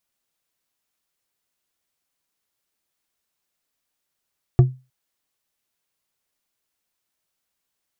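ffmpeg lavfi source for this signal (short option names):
-f lavfi -i "aevalsrc='0.562*pow(10,-3*t/0.28)*sin(2*PI*129*t)+0.188*pow(10,-3*t/0.138)*sin(2*PI*355.7*t)+0.0631*pow(10,-3*t/0.086)*sin(2*PI*697.1*t)+0.0211*pow(10,-3*t/0.06)*sin(2*PI*1152.4*t)+0.00708*pow(10,-3*t/0.046)*sin(2*PI*1720.9*t)':d=0.31:s=44100"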